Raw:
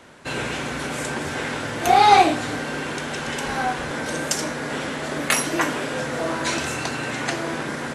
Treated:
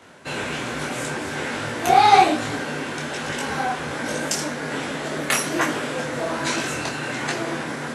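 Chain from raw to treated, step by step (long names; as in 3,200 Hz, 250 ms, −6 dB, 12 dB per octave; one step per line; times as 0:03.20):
high-pass filter 76 Hz
micro pitch shift up and down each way 42 cents
level +3.5 dB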